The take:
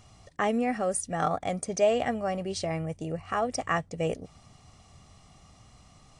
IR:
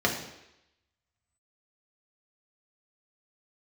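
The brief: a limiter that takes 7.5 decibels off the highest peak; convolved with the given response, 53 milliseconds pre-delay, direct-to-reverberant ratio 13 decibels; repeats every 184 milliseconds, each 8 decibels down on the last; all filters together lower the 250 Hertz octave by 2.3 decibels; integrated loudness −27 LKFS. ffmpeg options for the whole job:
-filter_complex "[0:a]equalizer=frequency=250:width_type=o:gain=-3,alimiter=limit=-21dB:level=0:latency=1,aecho=1:1:184|368|552|736|920:0.398|0.159|0.0637|0.0255|0.0102,asplit=2[link_01][link_02];[1:a]atrim=start_sample=2205,adelay=53[link_03];[link_02][link_03]afir=irnorm=-1:irlink=0,volume=-26dB[link_04];[link_01][link_04]amix=inputs=2:normalize=0,volume=4dB"

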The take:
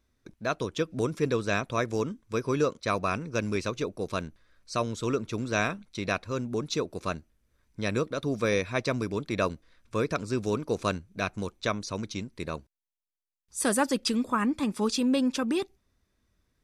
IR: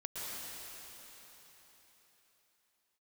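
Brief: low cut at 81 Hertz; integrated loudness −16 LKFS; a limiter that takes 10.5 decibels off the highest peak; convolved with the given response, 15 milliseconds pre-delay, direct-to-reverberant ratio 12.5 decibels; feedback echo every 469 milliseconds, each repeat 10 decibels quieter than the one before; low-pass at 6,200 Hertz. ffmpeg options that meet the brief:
-filter_complex "[0:a]highpass=81,lowpass=6200,alimiter=limit=-21.5dB:level=0:latency=1,aecho=1:1:469|938|1407|1876:0.316|0.101|0.0324|0.0104,asplit=2[link_01][link_02];[1:a]atrim=start_sample=2205,adelay=15[link_03];[link_02][link_03]afir=irnorm=-1:irlink=0,volume=-14.5dB[link_04];[link_01][link_04]amix=inputs=2:normalize=0,volume=17.5dB"

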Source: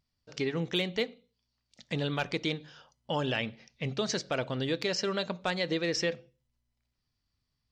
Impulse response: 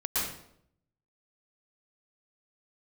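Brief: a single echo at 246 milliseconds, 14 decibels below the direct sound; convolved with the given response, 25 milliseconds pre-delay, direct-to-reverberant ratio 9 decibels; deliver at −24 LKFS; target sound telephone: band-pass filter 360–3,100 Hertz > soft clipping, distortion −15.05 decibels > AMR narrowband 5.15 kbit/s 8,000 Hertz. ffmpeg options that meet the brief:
-filter_complex "[0:a]aecho=1:1:246:0.2,asplit=2[link_01][link_02];[1:a]atrim=start_sample=2205,adelay=25[link_03];[link_02][link_03]afir=irnorm=-1:irlink=0,volume=-17.5dB[link_04];[link_01][link_04]amix=inputs=2:normalize=0,highpass=360,lowpass=3100,asoftclip=threshold=-26dB,volume=15dB" -ar 8000 -c:a libopencore_amrnb -b:a 5150

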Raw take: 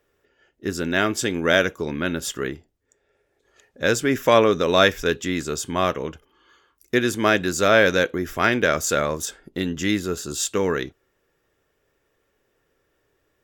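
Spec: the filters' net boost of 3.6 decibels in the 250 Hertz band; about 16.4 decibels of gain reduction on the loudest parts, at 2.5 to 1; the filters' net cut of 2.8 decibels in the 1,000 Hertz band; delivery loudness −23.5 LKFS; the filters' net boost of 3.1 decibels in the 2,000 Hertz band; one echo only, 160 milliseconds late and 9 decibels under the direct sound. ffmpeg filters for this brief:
ffmpeg -i in.wav -af "equalizer=frequency=250:width_type=o:gain=5,equalizer=frequency=1000:width_type=o:gain=-7.5,equalizer=frequency=2000:width_type=o:gain=7,acompressor=threshold=-37dB:ratio=2.5,aecho=1:1:160:0.355,volume=10.5dB" out.wav

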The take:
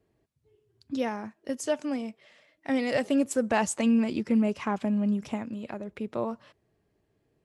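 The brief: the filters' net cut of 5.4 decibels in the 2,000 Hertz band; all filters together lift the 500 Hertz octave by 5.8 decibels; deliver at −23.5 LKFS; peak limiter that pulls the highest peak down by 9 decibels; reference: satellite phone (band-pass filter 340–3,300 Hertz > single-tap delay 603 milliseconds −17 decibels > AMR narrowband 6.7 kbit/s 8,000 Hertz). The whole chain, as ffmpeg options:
ffmpeg -i in.wav -af "equalizer=frequency=500:width_type=o:gain=8,equalizer=frequency=2000:width_type=o:gain=-6.5,alimiter=limit=-18dB:level=0:latency=1,highpass=340,lowpass=3300,aecho=1:1:603:0.141,volume=9dB" -ar 8000 -c:a libopencore_amrnb -b:a 6700 out.amr

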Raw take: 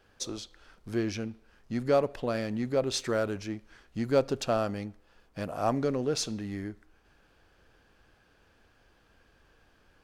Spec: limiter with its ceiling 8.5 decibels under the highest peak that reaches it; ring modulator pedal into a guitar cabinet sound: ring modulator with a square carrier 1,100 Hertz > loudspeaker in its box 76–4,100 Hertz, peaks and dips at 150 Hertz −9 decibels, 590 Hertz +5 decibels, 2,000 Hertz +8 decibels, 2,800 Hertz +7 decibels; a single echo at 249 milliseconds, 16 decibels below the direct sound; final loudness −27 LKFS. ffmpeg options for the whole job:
ffmpeg -i in.wav -af "alimiter=limit=-21dB:level=0:latency=1,aecho=1:1:249:0.158,aeval=exprs='val(0)*sgn(sin(2*PI*1100*n/s))':channel_layout=same,highpass=76,equalizer=frequency=150:width_type=q:width=4:gain=-9,equalizer=frequency=590:width_type=q:width=4:gain=5,equalizer=frequency=2000:width_type=q:width=4:gain=8,equalizer=frequency=2800:width_type=q:width=4:gain=7,lowpass=frequency=4100:width=0.5412,lowpass=frequency=4100:width=1.3066,volume=3dB" out.wav

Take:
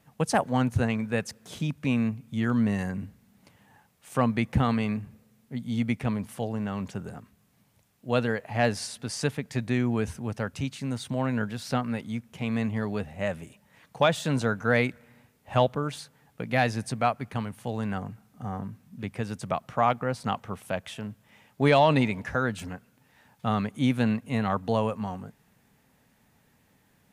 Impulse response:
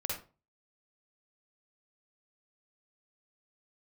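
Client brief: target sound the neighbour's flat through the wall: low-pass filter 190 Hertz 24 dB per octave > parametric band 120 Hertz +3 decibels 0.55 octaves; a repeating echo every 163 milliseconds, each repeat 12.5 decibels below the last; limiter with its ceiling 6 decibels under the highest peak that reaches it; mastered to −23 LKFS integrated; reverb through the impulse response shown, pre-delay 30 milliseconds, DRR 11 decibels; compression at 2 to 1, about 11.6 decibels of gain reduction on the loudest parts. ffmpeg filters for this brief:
-filter_complex "[0:a]acompressor=threshold=-38dB:ratio=2,alimiter=level_in=0.5dB:limit=-24dB:level=0:latency=1,volume=-0.5dB,aecho=1:1:163|326|489:0.237|0.0569|0.0137,asplit=2[link_01][link_02];[1:a]atrim=start_sample=2205,adelay=30[link_03];[link_02][link_03]afir=irnorm=-1:irlink=0,volume=-14dB[link_04];[link_01][link_04]amix=inputs=2:normalize=0,lowpass=frequency=190:width=0.5412,lowpass=frequency=190:width=1.3066,equalizer=frequency=120:width_type=o:width=0.55:gain=3,volume=19dB"

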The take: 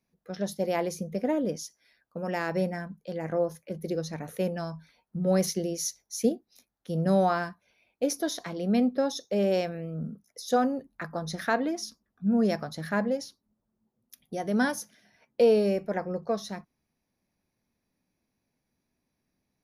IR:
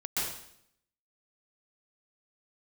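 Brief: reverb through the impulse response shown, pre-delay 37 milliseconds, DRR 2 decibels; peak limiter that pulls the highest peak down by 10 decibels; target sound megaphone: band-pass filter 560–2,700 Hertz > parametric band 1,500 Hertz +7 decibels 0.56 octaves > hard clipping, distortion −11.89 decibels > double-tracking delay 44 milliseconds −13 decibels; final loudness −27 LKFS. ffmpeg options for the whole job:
-filter_complex "[0:a]alimiter=limit=-22.5dB:level=0:latency=1,asplit=2[link_01][link_02];[1:a]atrim=start_sample=2205,adelay=37[link_03];[link_02][link_03]afir=irnorm=-1:irlink=0,volume=-8.5dB[link_04];[link_01][link_04]amix=inputs=2:normalize=0,highpass=560,lowpass=2700,equalizer=frequency=1500:width_type=o:width=0.56:gain=7,asoftclip=type=hard:threshold=-31dB,asplit=2[link_05][link_06];[link_06]adelay=44,volume=-13dB[link_07];[link_05][link_07]amix=inputs=2:normalize=0,volume=10.5dB"

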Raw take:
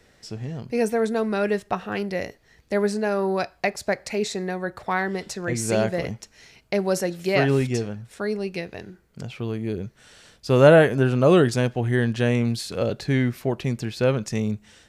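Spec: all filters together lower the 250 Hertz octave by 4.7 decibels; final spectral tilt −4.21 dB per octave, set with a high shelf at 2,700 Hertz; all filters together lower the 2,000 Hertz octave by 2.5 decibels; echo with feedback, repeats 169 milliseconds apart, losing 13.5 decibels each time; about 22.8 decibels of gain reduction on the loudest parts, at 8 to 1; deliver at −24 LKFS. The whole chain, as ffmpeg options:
ffmpeg -i in.wav -af "equalizer=frequency=250:width_type=o:gain=-6.5,equalizer=frequency=2000:width_type=o:gain=-6.5,highshelf=frequency=2700:gain=8,acompressor=threshold=-35dB:ratio=8,aecho=1:1:169|338:0.211|0.0444,volume=15dB" out.wav

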